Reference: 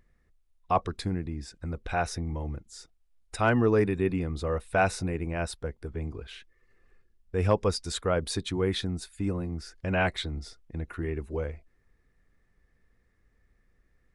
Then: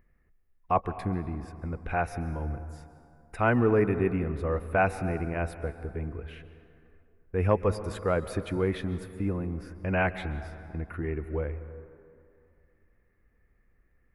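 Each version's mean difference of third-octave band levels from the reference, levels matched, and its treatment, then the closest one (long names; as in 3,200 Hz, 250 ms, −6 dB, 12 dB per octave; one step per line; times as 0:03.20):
5.5 dB: flat-topped bell 5,500 Hz −15 dB
dense smooth reverb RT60 2.5 s, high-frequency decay 0.5×, pre-delay 120 ms, DRR 12.5 dB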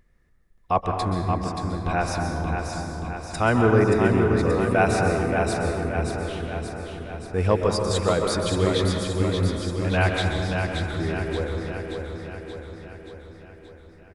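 10.5 dB: on a send: repeating echo 578 ms, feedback 58%, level −5.5 dB
on the sum: dense smooth reverb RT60 1.9 s, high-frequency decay 0.4×, pre-delay 115 ms, DRR 2.5 dB
level +3 dB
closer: first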